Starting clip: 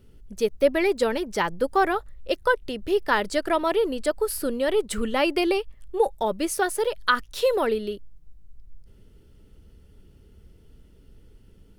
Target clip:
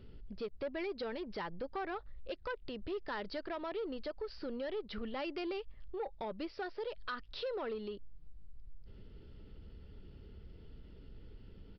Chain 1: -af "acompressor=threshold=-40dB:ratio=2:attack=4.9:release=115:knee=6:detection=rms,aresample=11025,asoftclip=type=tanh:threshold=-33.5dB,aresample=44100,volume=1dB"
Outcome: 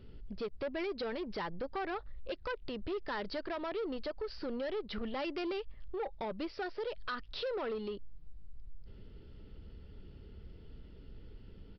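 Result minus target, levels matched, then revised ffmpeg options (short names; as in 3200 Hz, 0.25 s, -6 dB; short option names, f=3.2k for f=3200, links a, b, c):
compressor: peak gain reduction -4 dB
-af "acompressor=threshold=-48dB:ratio=2:attack=4.9:release=115:knee=6:detection=rms,aresample=11025,asoftclip=type=tanh:threshold=-33.5dB,aresample=44100,volume=1dB"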